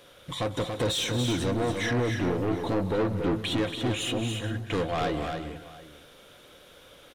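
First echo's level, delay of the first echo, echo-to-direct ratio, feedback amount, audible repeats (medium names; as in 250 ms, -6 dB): -19.0 dB, 187 ms, -4.5 dB, no regular repeats, 6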